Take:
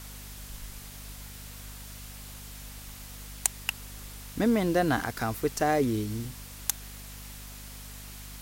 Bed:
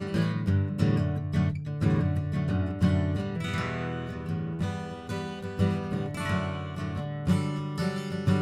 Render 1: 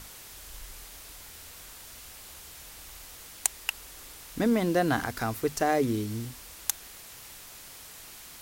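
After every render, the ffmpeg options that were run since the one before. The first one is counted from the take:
-af "bandreject=f=50:t=h:w=6,bandreject=f=100:t=h:w=6,bandreject=f=150:t=h:w=6,bandreject=f=200:t=h:w=6,bandreject=f=250:t=h:w=6"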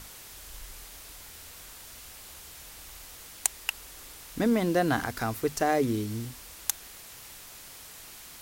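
-af anull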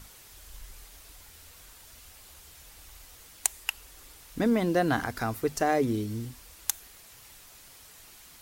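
-af "afftdn=nr=6:nf=-47"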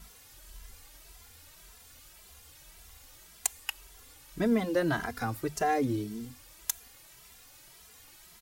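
-filter_complex "[0:a]asplit=2[a][b];[b]adelay=2.6,afreqshift=1.8[c];[a][c]amix=inputs=2:normalize=1"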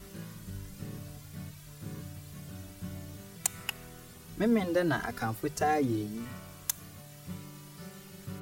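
-filter_complex "[1:a]volume=-17.5dB[a];[0:a][a]amix=inputs=2:normalize=0"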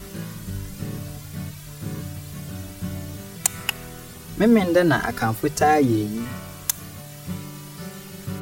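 -af "volume=10.5dB,alimiter=limit=-1dB:level=0:latency=1"

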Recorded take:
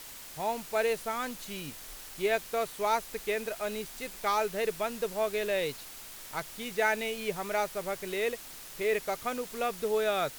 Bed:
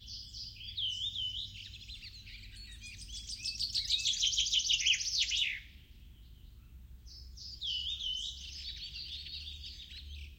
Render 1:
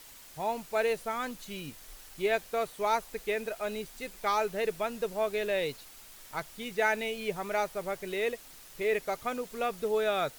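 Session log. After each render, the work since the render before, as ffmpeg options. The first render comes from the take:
-af "afftdn=nr=6:nf=-46"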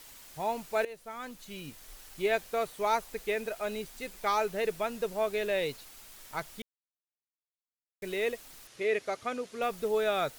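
-filter_complex "[0:a]asettb=1/sr,asplit=3[a][b][c];[a]atrim=end=8.674[d];[b]atrim=start=8.67:end=9.62,asetpts=PTS-STARTPTS,afade=t=in:d=0.004:c=qsin,afade=t=out:st=0.946:d=0.004:c=qsin,highpass=100,equalizer=f=110:t=q:w=4:g=7,equalizer=f=160:t=q:w=4:g=-10,equalizer=f=890:t=q:w=4:g=-5,equalizer=f=7.9k:t=q:w=4:g=-6,lowpass=f=9.5k:w=0.5412,lowpass=f=9.5k:w=1.3066[e];[c]atrim=start=9.616[f];[d][e]acrossfade=d=0.004:c1=hsin:c2=qsin[g];[g][f]acrossfade=d=0.004:c1=qsin:c2=hsin,asplit=4[h][i][j][k];[h]atrim=end=0.85,asetpts=PTS-STARTPTS,afade=t=out:st=0.846:d=0.004:c=hsin:silence=0.133352[l];[i]atrim=start=0.85:end=6.62,asetpts=PTS-STARTPTS,afade=t=in:d=1.46:c=qsin:silence=0.133352,afade=t=out:st=5.766:d=0.004:c=hsin[m];[j]atrim=start=6.62:end=8.02,asetpts=PTS-STARTPTS,volume=0[n];[k]atrim=start=8.02,asetpts=PTS-STARTPTS,afade=t=in:d=0.004:c=hsin[o];[l][m][n][o]concat=n=4:v=0:a=1"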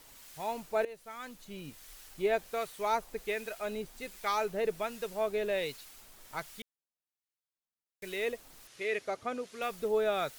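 -filter_complex "[0:a]acrossover=split=1200[a][b];[a]aeval=exprs='val(0)*(1-0.5/2+0.5/2*cos(2*PI*1.3*n/s))':c=same[c];[b]aeval=exprs='val(0)*(1-0.5/2-0.5/2*cos(2*PI*1.3*n/s))':c=same[d];[c][d]amix=inputs=2:normalize=0"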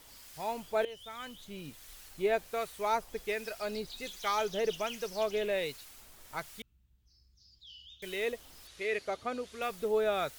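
-filter_complex "[1:a]volume=-15.5dB[a];[0:a][a]amix=inputs=2:normalize=0"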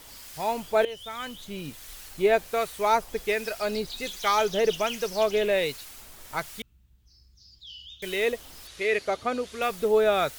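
-af "volume=8dB"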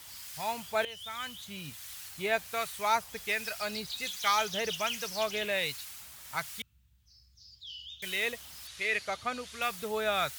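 -af "highpass=f=69:w=0.5412,highpass=f=69:w=1.3066,equalizer=f=380:w=0.72:g=-14.5"

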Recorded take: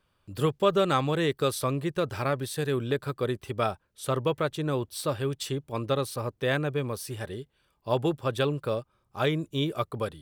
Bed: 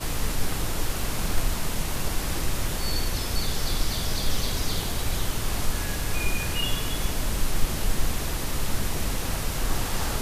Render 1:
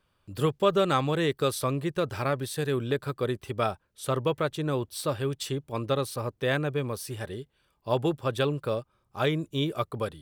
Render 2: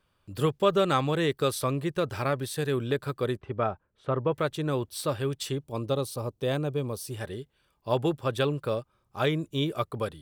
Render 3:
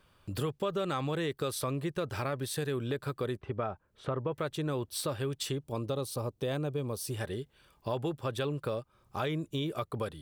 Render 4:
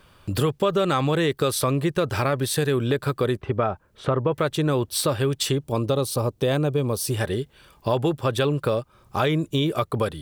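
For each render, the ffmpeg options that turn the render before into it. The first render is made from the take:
-af anull
-filter_complex "[0:a]asettb=1/sr,asplit=3[a][b][c];[a]atrim=end=3.374[d];[b]atrim=start=3.37:end=4.32,asetpts=PTS-STARTPTS,afade=t=in:d=0.004:c=qsin,afade=t=out:st=0.946:d=0.004:c=qsin,lowpass=1.7k[e];[c]atrim=start=4.316[f];[d][e]acrossfade=d=0.004:c1=hsin:c2=qsin[g];[g][f]acrossfade=d=0.004:c1=qsin:c2=hsin,asettb=1/sr,asplit=3[h][i][j];[h]atrim=end=5.644[k];[i]atrim=start=5.64:end=7.14,asetpts=PTS-STARTPTS,afade=t=in:d=0.004:c=qsin,afade=t=out:st=1.496:d=0.004:c=qsin,equalizer=f=1.8k:w=1.3:g=-11[l];[j]atrim=start=7.136[m];[k][l]acrossfade=d=0.004:c1=hsin:c2=qsin[n];[n][m]acrossfade=d=0.004:c1=qsin:c2=hsin"
-filter_complex "[0:a]asplit=2[a][b];[b]alimiter=limit=-21.5dB:level=0:latency=1:release=18,volume=1.5dB[c];[a][c]amix=inputs=2:normalize=0,acompressor=threshold=-36dB:ratio=2.5"
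-af "volume=11dB"

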